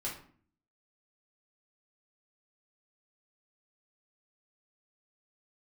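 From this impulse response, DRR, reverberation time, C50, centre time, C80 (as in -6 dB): -5.5 dB, 0.50 s, 6.5 dB, 31 ms, 11.5 dB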